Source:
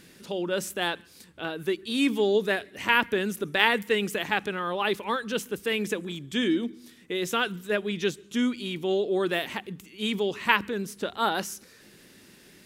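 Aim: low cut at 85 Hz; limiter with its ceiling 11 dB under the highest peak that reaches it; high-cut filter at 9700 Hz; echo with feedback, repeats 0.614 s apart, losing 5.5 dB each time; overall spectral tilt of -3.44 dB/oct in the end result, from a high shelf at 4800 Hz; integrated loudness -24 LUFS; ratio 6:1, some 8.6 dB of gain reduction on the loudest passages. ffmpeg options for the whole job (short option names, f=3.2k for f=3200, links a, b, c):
-af "highpass=85,lowpass=9.7k,highshelf=f=4.8k:g=-7,acompressor=threshold=-27dB:ratio=6,alimiter=limit=-23dB:level=0:latency=1,aecho=1:1:614|1228|1842|2456|3070|3684|4298:0.531|0.281|0.149|0.079|0.0419|0.0222|0.0118,volume=9dB"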